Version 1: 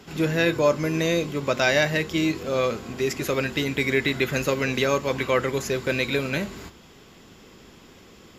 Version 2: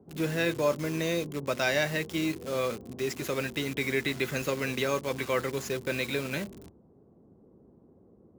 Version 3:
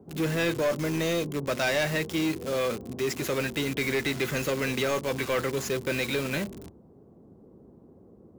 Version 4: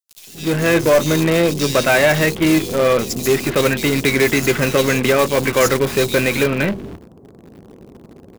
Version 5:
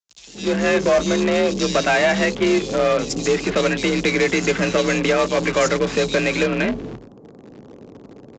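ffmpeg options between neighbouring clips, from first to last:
ffmpeg -i in.wav -filter_complex "[0:a]highpass=68,acrossover=split=740[link_01][link_02];[link_02]acrusher=bits=5:mix=0:aa=0.000001[link_03];[link_01][link_03]amix=inputs=2:normalize=0,volume=-6.5dB" out.wav
ffmpeg -i in.wav -af "asoftclip=type=tanh:threshold=-26dB,volume=5dB" out.wav
ffmpeg -i in.wav -filter_complex "[0:a]acrossover=split=3400[link_01][link_02];[link_01]adelay=270[link_03];[link_03][link_02]amix=inputs=2:normalize=0,asplit=2[link_04][link_05];[link_05]acrusher=bits=5:dc=4:mix=0:aa=0.000001,volume=-7dB[link_06];[link_04][link_06]amix=inputs=2:normalize=0,dynaudnorm=framelen=370:gausssize=3:maxgain=9dB,volume=1dB" out.wav
ffmpeg -i in.wav -af "acompressor=threshold=-19dB:ratio=1.5,afreqshift=41,aresample=16000,aresample=44100" out.wav

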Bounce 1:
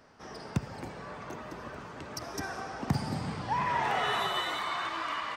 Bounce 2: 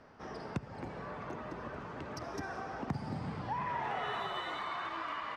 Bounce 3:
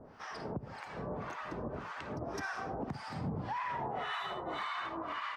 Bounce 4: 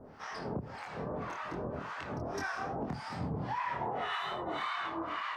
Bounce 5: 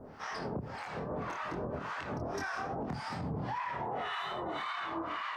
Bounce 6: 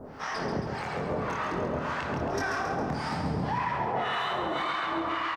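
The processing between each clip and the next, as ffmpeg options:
ffmpeg -i in.wav -af "aemphasis=mode=reproduction:type=75fm,acompressor=threshold=-41dB:ratio=2,volume=1dB" out.wav
ffmpeg -i in.wav -filter_complex "[0:a]acrossover=split=860[link_01][link_02];[link_01]aeval=exprs='val(0)*(1-1/2+1/2*cos(2*PI*1.8*n/s))':channel_layout=same[link_03];[link_02]aeval=exprs='val(0)*(1-1/2-1/2*cos(2*PI*1.8*n/s))':channel_layout=same[link_04];[link_03][link_04]amix=inputs=2:normalize=0,alimiter=level_in=12.5dB:limit=-24dB:level=0:latency=1:release=114,volume=-12.5dB,volume=7.5dB" out.wav
ffmpeg -i in.wav -af "flanger=delay=22.5:depth=4.9:speed=2.5,volume=5dB" out.wav
ffmpeg -i in.wav -af "alimiter=level_in=7dB:limit=-24dB:level=0:latency=1:release=72,volume=-7dB,volume=2.5dB" out.wav
ffmpeg -i in.wav -af "bandreject=frequency=60:width_type=h:width=6,bandreject=frequency=120:width_type=h:width=6,aecho=1:1:136|272|408|544|680|816|952:0.473|0.256|0.138|0.0745|0.0402|0.0217|0.0117,volume=6dB" out.wav

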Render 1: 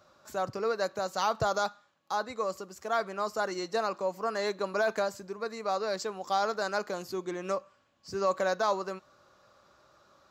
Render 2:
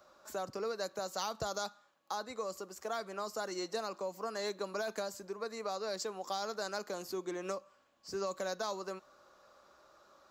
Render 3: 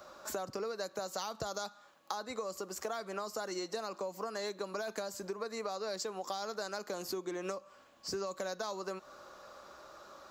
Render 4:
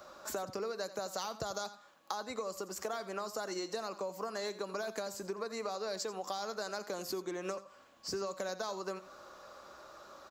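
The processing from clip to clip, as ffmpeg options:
ffmpeg -i in.wav -filter_complex "[0:a]equalizer=frequency=3000:width=0.45:gain=-4.5,acrossover=split=280|3000[link_01][link_02][link_03];[link_02]acompressor=threshold=-38dB:ratio=6[link_04];[link_01][link_04][link_03]amix=inputs=3:normalize=0,equalizer=frequency=110:width=0.74:gain=-14,volume=2dB" out.wav
ffmpeg -i in.wav -af "acompressor=threshold=-46dB:ratio=5,volume=9.5dB" out.wav
ffmpeg -i in.wav -af "aecho=1:1:86:0.178" out.wav

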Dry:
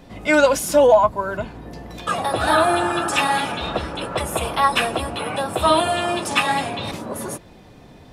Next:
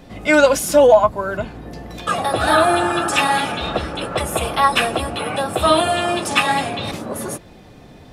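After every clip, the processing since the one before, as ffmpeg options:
ffmpeg -i in.wav -af "bandreject=frequency=970:width=14,volume=2.5dB" out.wav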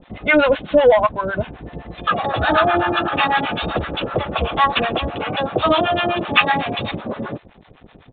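ffmpeg -i in.wav -filter_complex "[0:a]acontrast=62,aresample=8000,aeval=exprs='sgn(val(0))*max(abs(val(0))-0.0112,0)':channel_layout=same,aresample=44100,acrossover=split=710[link_01][link_02];[link_01]aeval=exprs='val(0)*(1-1/2+1/2*cos(2*PI*7.9*n/s))':channel_layout=same[link_03];[link_02]aeval=exprs='val(0)*(1-1/2-1/2*cos(2*PI*7.9*n/s))':channel_layout=same[link_04];[link_03][link_04]amix=inputs=2:normalize=0" out.wav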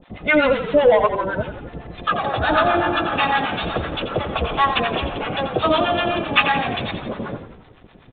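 ffmpeg -i in.wav -filter_complex "[0:a]asplit=8[link_01][link_02][link_03][link_04][link_05][link_06][link_07][link_08];[link_02]adelay=86,afreqshift=-37,volume=-9.5dB[link_09];[link_03]adelay=172,afreqshift=-74,volume=-14.1dB[link_10];[link_04]adelay=258,afreqshift=-111,volume=-18.7dB[link_11];[link_05]adelay=344,afreqshift=-148,volume=-23.2dB[link_12];[link_06]adelay=430,afreqshift=-185,volume=-27.8dB[link_13];[link_07]adelay=516,afreqshift=-222,volume=-32.4dB[link_14];[link_08]adelay=602,afreqshift=-259,volume=-37dB[link_15];[link_01][link_09][link_10][link_11][link_12][link_13][link_14][link_15]amix=inputs=8:normalize=0,volume=-2dB" out.wav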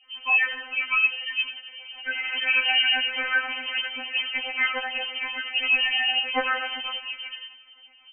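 ffmpeg -i in.wav -af "lowpass=frequency=2700:width_type=q:width=0.5098,lowpass=frequency=2700:width_type=q:width=0.6013,lowpass=frequency=2700:width_type=q:width=0.9,lowpass=frequency=2700:width_type=q:width=2.563,afreqshift=-3200,afftfilt=real='re*3.46*eq(mod(b,12),0)':imag='im*3.46*eq(mod(b,12),0)':win_size=2048:overlap=0.75,volume=-3.5dB" out.wav

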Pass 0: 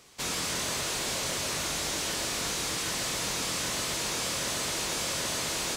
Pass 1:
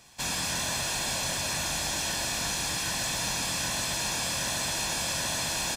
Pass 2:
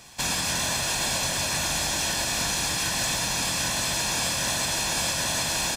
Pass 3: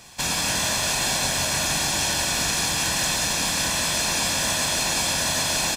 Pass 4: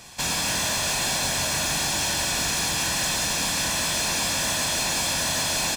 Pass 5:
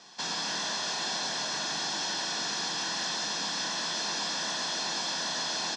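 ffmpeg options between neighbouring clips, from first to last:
ffmpeg -i in.wav -af "aecho=1:1:1.2:0.58" out.wav
ffmpeg -i in.wav -af "alimiter=limit=-24dB:level=0:latency=1:release=130,volume=7dB" out.wav
ffmpeg -i in.wav -af "aecho=1:1:34.99|180.8:0.282|0.562,volume=1.5dB" out.wav
ffmpeg -i in.wav -af "asoftclip=type=tanh:threshold=-21.5dB,volume=1.5dB" out.wav
ffmpeg -i in.wav -af "highpass=frequency=200:width=0.5412,highpass=frequency=200:width=1.3066,equalizer=frequency=260:width_type=q:width=4:gain=-5,equalizer=frequency=570:width_type=q:width=4:gain=-6,equalizer=frequency=2400:width_type=q:width=4:gain=-10,equalizer=frequency=5500:width_type=q:width=4:gain=4,lowpass=frequency=5500:width=0.5412,lowpass=frequency=5500:width=1.3066,volume=-4.5dB" out.wav

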